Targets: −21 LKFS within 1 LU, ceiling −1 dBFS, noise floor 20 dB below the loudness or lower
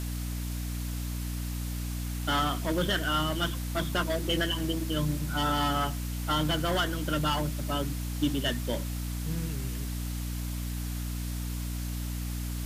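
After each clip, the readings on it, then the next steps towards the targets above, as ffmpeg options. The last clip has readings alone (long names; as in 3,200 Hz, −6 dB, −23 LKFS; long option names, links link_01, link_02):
mains hum 60 Hz; hum harmonics up to 300 Hz; level of the hum −31 dBFS; background noise floor −34 dBFS; target noise floor −51 dBFS; integrated loudness −31.0 LKFS; sample peak −15.5 dBFS; target loudness −21.0 LKFS
→ -af "bandreject=frequency=60:width_type=h:width=4,bandreject=frequency=120:width_type=h:width=4,bandreject=frequency=180:width_type=h:width=4,bandreject=frequency=240:width_type=h:width=4,bandreject=frequency=300:width_type=h:width=4"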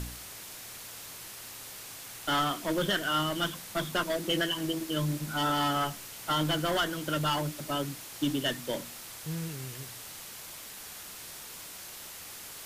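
mains hum none found; background noise floor −45 dBFS; target noise floor −53 dBFS
→ -af "afftdn=noise_reduction=8:noise_floor=-45"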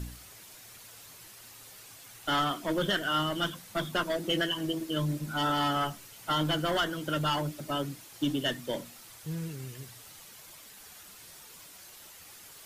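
background noise floor −51 dBFS; integrated loudness −31.0 LKFS; sample peak −17.5 dBFS; target loudness −21.0 LKFS
→ -af "volume=10dB"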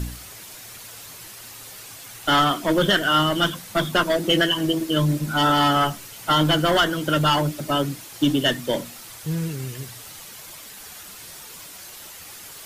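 integrated loudness −21.0 LKFS; sample peak −7.5 dBFS; background noise floor −41 dBFS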